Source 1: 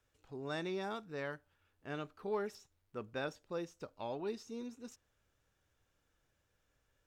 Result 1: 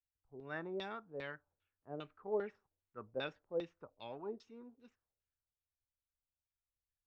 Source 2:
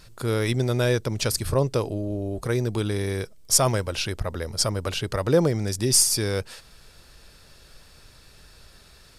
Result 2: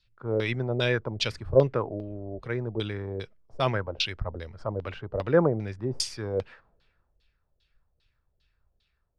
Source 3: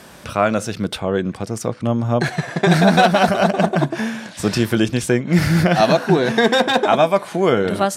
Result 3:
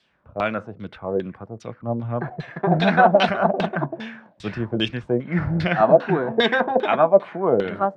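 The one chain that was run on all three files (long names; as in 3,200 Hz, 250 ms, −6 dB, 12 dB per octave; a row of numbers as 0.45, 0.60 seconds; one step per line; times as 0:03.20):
auto-filter low-pass saw down 2.5 Hz 480–3,900 Hz
multiband upward and downward expander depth 70%
level −6.5 dB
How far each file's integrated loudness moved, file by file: −2.0, −5.0, −3.5 LU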